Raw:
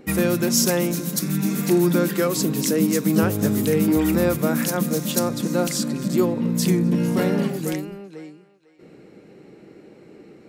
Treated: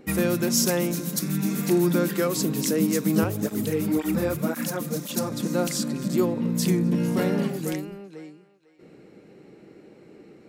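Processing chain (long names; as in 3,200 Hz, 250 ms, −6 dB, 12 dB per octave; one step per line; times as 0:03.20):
0:03.24–0:05.32: through-zero flanger with one copy inverted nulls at 1.9 Hz, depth 5.5 ms
level −3 dB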